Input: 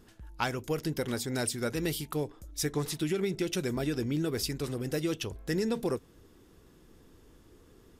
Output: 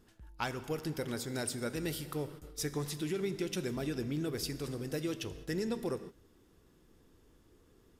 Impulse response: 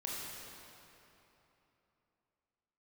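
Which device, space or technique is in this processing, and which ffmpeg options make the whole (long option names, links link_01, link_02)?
keyed gated reverb: -filter_complex "[0:a]asplit=3[link_01][link_02][link_03];[1:a]atrim=start_sample=2205[link_04];[link_02][link_04]afir=irnorm=-1:irlink=0[link_05];[link_03]apad=whole_len=352420[link_06];[link_05][link_06]sidechaingate=range=-33dB:threshold=-46dB:ratio=16:detection=peak,volume=-10.5dB[link_07];[link_01][link_07]amix=inputs=2:normalize=0,volume=-6.5dB"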